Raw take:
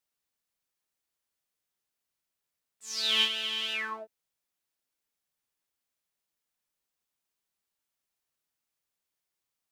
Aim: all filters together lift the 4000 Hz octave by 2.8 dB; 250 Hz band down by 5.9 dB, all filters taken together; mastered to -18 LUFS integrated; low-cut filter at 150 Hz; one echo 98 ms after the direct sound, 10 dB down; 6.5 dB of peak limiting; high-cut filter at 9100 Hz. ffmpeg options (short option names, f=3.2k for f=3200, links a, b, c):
-af "highpass=150,lowpass=9.1k,equalizer=f=250:t=o:g=-6,equalizer=f=4k:t=o:g=4,alimiter=limit=-17dB:level=0:latency=1,aecho=1:1:98:0.316,volume=9.5dB"